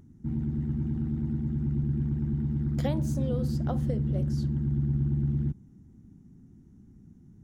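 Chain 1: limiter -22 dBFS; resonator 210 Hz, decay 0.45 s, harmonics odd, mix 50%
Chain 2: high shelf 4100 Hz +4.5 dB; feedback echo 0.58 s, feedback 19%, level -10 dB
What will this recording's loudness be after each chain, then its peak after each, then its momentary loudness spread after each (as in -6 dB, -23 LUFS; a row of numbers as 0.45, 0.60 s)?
-36.5, -29.0 LUFS; -27.0, -16.0 dBFS; 2, 8 LU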